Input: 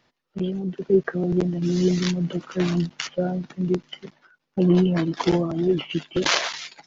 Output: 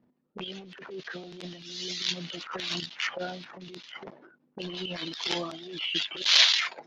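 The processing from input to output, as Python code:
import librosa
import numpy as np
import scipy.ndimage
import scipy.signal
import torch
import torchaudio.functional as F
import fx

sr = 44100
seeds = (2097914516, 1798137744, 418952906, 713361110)

y = fx.auto_wah(x, sr, base_hz=220.0, top_hz=3700.0, q=2.5, full_db=-23.5, direction='up')
y = fx.transient(y, sr, attack_db=-8, sustain_db=11)
y = y * librosa.db_to_amplitude(7.5)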